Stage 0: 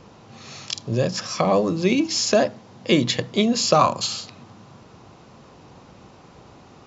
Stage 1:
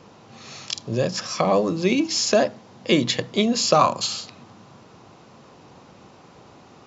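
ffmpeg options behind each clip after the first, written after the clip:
ffmpeg -i in.wav -af "highpass=frequency=130:poles=1" out.wav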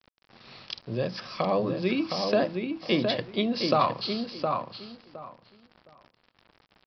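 ffmpeg -i in.wav -filter_complex "[0:a]aresample=11025,aeval=exprs='val(0)*gte(abs(val(0)),0.00944)':channel_layout=same,aresample=44100,asplit=2[link_01][link_02];[link_02]adelay=714,lowpass=frequency=2400:poles=1,volume=-4.5dB,asplit=2[link_03][link_04];[link_04]adelay=714,lowpass=frequency=2400:poles=1,volume=0.2,asplit=2[link_05][link_06];[link_06]adelay=714,lowpass=frequency=2400:poles=1,volume=0.2[link_07];[link_01][link_03][link_05][link_07]amix=inputs=4:normalize=0,volume=-6.5dB" out.wav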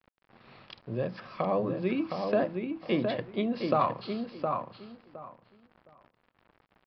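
ffmpeg -i in.wav -af "lowpass=2200,volume=-2.5dB" out.wav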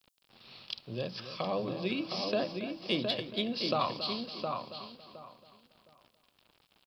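ffmpeg -i in.wav -af "aexciter=amount=4.1:drive=8.9:freq=2800,aecho=1:1:277|554|831:0.251|0.0804|0.0257,volume=-5dB" out.wav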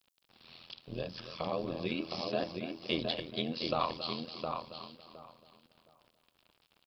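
ffmpeg -i in.wav -filter_complex "[0:a]acrossover=split=5400[link_01][link_02];[link_02]acompressor=threshold=-55dB:ratio=4:attack=1:release=60[link_03];[link_01][link_03]amix=inputs=2:normalize=0,tremolo=f=83:d=0.857,volume=1.5dB" out.wav

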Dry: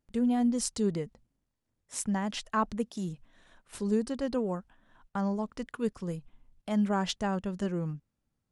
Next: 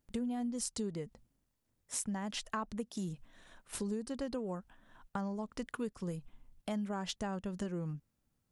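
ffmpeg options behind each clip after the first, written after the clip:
ffmpeg -i in.wav -af "highshelf=frequency=8800:gain=7,acompressor=threshold=-36dB:ratio=6,volume=1dB" out.wav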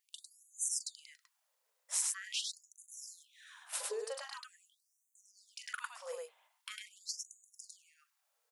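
ffmpeg -i in.wav -af "aecho=1:1:40.82|102:0.355|0.794,afftfilt=real='re*gte(b*sr/1024,420*pow(6100/420,0.5+0.5*sin(2*PI*0.44*pts/sr)))':imag='im*gte(b*sr/1024,420*pow(6100/420,0.5+0.5*sin(2*PI*0.44*pts/sr)))':win_size=1024:overlap=0.75,volume=3.5dB" out.wav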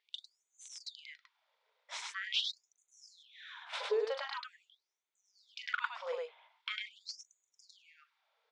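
ffmpeg -i in.wav -af "asoftclip=type=tanh:threshold=-24.5dB,highpass=frequency=300:width=0.5412,highpass=frequency=300:width=1.3066,equalizer=frequency=420:width_type=q:width=4:gain=7,equalizer=frequency=650:width_type=q:width=4:gain=4,equalizer=frequency=930:width_type=q:width=4:gain=7,equalizer=frequency=1400:width_type=q:width=4:gain=5,equalizer=frequency=2200:width_type=q:width=4:gain=8,equalizer=frequency=3500:width_type=q:width=4:gain=8,lowpass=frequency=4600:width=0.5412,lowpass=frequency=4600:width=1.3066,volume=1.5dB" out.wav

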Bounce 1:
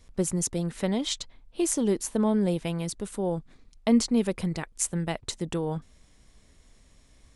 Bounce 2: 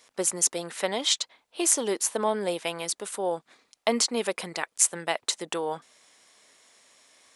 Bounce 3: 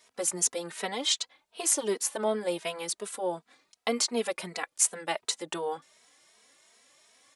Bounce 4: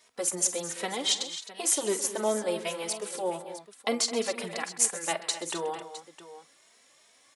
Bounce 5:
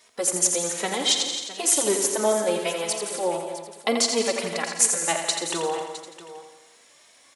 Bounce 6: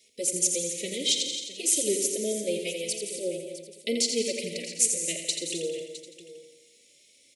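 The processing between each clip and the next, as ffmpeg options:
ffmpeg -i in.wav -af "highpass=620,volume=7dB" out.wav
ffmpeg -i in.wav -filter_complex "[0:a]asplit=2[link_01][link_02];[link_02]adelay=2.8,afreqshift=2.7[link_03];[link_01][link_03]amix=inputs=2:normalize=1" out.wav
ffmpeg -i in.wav -af "aecho=1:1:42|48|130|212|262|660:0.126|0.141|0.141|0.168|0.237|0.178" out.wav
ffmpeg -i in.wav -af "aecho=1:1:85|170|255|340|425|510|595:0.447|0.246|0.135|0.0743|0.0409|0.0225|0.0124,volume=5dB" out.wav
ffmpeg -i in.wav -af "asuperstop=centerf=1100:order=12:qfactor=0.69,volume=-3.5dB" out.wav

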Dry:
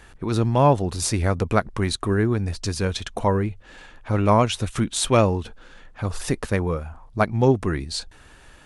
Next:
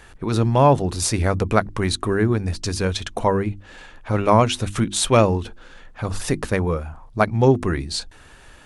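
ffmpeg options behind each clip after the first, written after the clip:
ffmpeg -i in.wav -af "bandreject=frequency=50:width_type=h:width=6,bandreject=frequency=100:width_type=h:width=6,bandreject=frequency=150:width_type=h:width=6,bandreject=frequency=200:width_type=h:width=6,bandreject=frequency=250:width_type=h:width=6,bandreject=frequency=300:width_type=h:width=6,bandreject=frequency=350:width_type=h:width=6,volume=2.5dB" out.wav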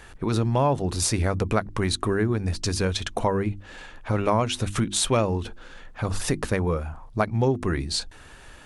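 ffmpeg -i in.wav -af "acompressor=threshold=-21dB:ratio=2.5" out.wav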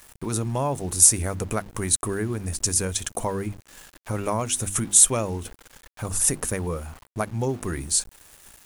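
ffmpeg -i in.wav -af "aexciter=amount=9:drive=3.3:freq=6300,aeval=exprs='val(0)*gte(abs(val(0)),0.0141)':channel_layout=same,volume=-4dB" out.wav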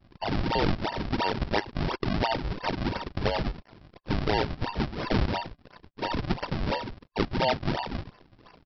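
ffmpeg -i in.wav -af "afftfilt=real='real(if(between(b,1,1008),(2*floor((b-1)/48)+1)*48-b,b),0)':imag='imag(if(between(b,1,1008),(2*floor((b-1)/48)+1)*48-b,b),0)*if(between(b,1,1008),-1,1)':win_size=2048:overlap=0.75,aresample=11025,acrusher=samples=14:mix=1:aa=0.000001:lfo=1:lforange=22.4:lforate=2.9,aresample=44100" out.wav

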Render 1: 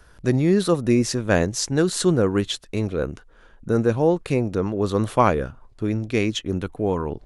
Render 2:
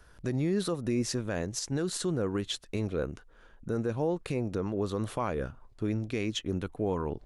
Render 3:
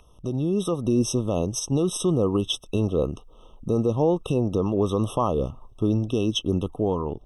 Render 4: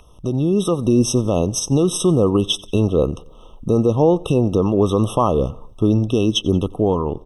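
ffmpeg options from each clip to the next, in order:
ffmpeg -i in.wav -af "alimiter=limit=-15dB:level=0:latency=1:release=182,volume=-5.5dB" out.wav
ffmpeg -i in.wav -af "aeval=exprs='val(0)+0.0141*sin(2*PI*2300*n/s)':channel_layout=same,dynaudnorm=framelen=200:gausssize=7:maxgain=5.5dB,afftfilt=real='re*eq(mod(floor(b*sr/1024/1300),2),0)':imag='im*eq(mod(floor(b*sr/1024/1300),2),0)':win_size=1024:overlap=0.75,volume=3dB" out.wav
ffmpeg -i in.wav -af "aecho=1:1:90|180|270:0.0668|0.0327|0.016,volume=6.5dB" out.wav

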